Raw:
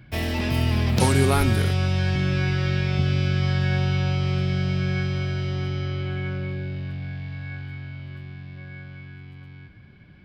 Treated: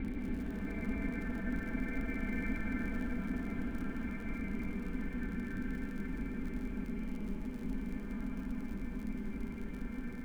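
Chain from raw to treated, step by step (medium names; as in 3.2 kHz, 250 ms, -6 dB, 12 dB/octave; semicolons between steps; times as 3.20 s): level-controlled noise filter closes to 1.1 kHz, open at -19.5 dBFS; Paulstretch 9×, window 0.05 s, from 8.51 s; crackle 84 per s -47 dBFS; ring modulator 110 Hz; on a send: reverberation RT60 4.8 s, pre-delay 109 ms, DRR 3 dB; on the sum: trim +4.5 dB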